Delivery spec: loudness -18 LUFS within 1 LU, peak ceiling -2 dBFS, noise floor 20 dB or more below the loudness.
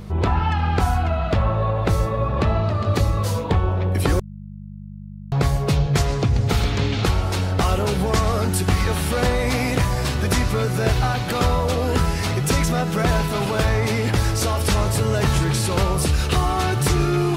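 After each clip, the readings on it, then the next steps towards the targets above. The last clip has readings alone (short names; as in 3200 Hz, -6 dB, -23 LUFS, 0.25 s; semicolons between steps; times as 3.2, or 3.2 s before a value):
hum 50 Hz; harmonics up to 200 Hz; hum level -32 dBFS; loudness -21.0 LUFS; peak -8.5 dBFS; loudness target -18.0 LUFS
-> de-hum 50 Hz, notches 4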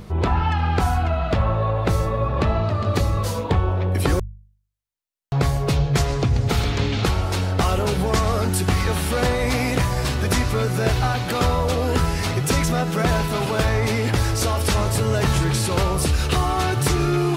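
hum none; loudness -21.5 LUFS; peak -8.0 dBFS; loudness target -18.0 LUFS
-> gain +3.5 dB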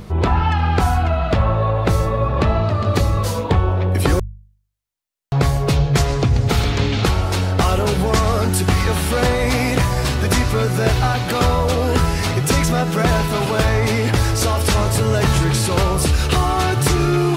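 loudness -18.0 LUFS; peak -4.5 dBFS; noise floor -47 dBFS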